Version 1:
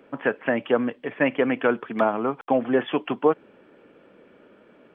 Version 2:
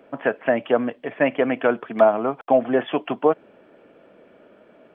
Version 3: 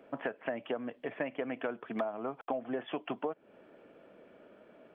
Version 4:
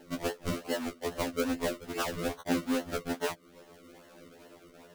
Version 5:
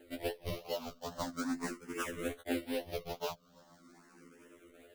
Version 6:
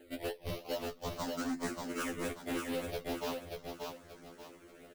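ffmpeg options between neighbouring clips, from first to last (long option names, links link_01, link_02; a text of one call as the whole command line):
ffmpeg -i in.wav -af "equalizer=frequency=660:width=3.9:gain=9" out.wav
ffmpeg -i in.wav -af "acompressor=threshold=-26dB:ratio=8,volume=-6dB" out.wav
ffmpeg -i in.wav -af "acrusher=samples=36:mix=1:aa=0.000001:lfo=1:lforange=36:lforate=2.4,afftfilt=real='re*2*eq(mod(b,4),0)':imag='im*2*eq(mod(b,4),0)':win_size=2048:overlap=0.75,volume=6dB" out.wav
ffmpeg -i in.wav -filter_complex "[0:a]asplit=2[link_01][link_02];[link_02]afreqshift=0.41[link_03];[link_01][link_03]amix=inputs=2:normalize=1,volume=-2.5dB" out.wav
ffmpeg -i in.wav -filter_complex "[0:a]volume=33dB,asoftclip=hard,volume=-33dB,asplit=2[link_01][link_02];[link_02]aecho=0:1:584|1168|1752|2336:0.631|0.202|0.0646|0.0207[link_03];[link_01][link_03]amix=inputs=2:normalize=0,volume=1dB" out.wav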